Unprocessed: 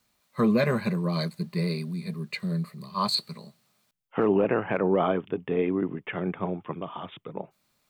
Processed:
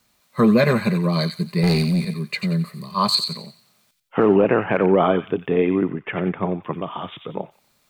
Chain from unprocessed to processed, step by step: 1.63–2.05 sample leveller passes 2; 5.89–6.63 air absorption 150 m; thin delay 90 ms, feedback 33%, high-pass 2100 Hz, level -6 dB; gain +7 dB

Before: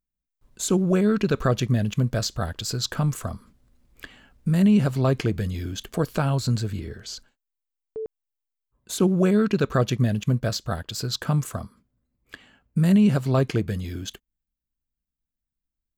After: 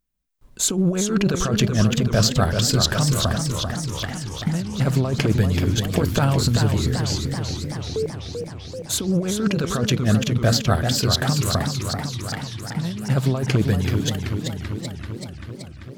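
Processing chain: negative-ratio compressor -23 dBFS, ratio -0.5; warbling echo 0.385 s, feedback 70%, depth 150 cents, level -6 dB; gain +4.5 dB

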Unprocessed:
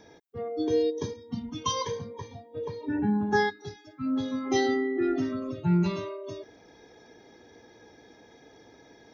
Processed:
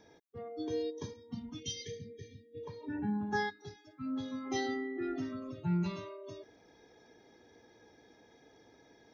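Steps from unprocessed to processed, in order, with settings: dynamic EQ 410 Hz, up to -4 dB, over -38 dBFS, Q 1.5; spectral delete 1.6–2.64, 510–1700 Hz; gain -7.5 dB

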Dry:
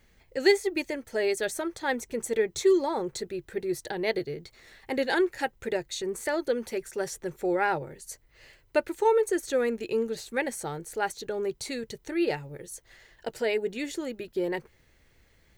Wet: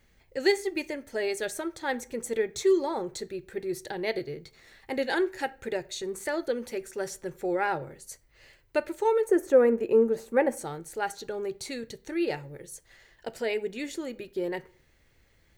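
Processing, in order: 9.27–10.57 graphic EQ 250/500/1000/4000/8000 Hz +5/+7/+7/-12/-4 dB; reverb RT60 0.50 s, pre-delay 3 ms, DRR 14.5 dB; gain -2 dB

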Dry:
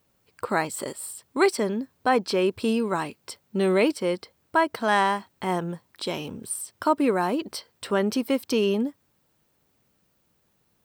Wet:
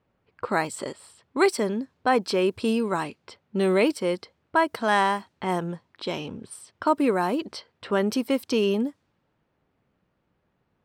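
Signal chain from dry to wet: low-pass opened by the level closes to 2200 Hz, open at -21 dBFS

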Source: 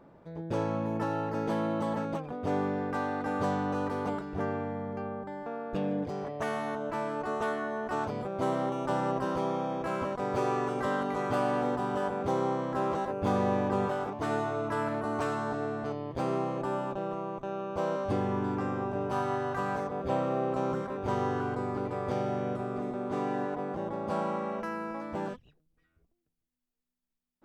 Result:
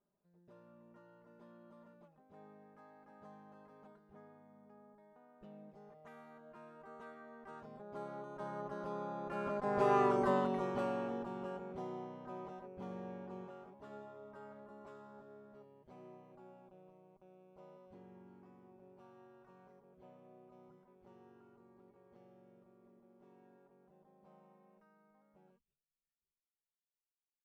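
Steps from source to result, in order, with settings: Doppler pass-by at 10.1, 19 m/s, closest 6.3 m; high shelf 3500 Hz -7.5 dB; comb 5 ms, depth 67%; gain -2 dB

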